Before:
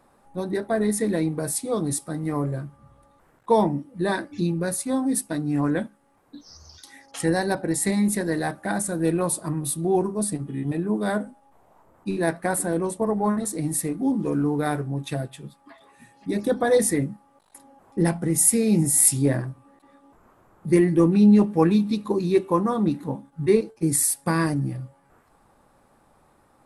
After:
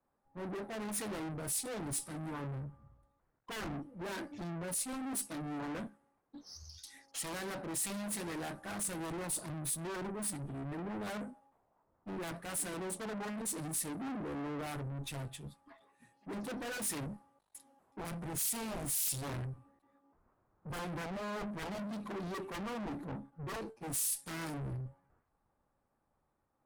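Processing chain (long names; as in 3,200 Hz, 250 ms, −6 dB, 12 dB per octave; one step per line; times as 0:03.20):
wave folding −20.5 dBFS
tube saturation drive 39 dB, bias 0.3
multiband upward and downward expander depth 100%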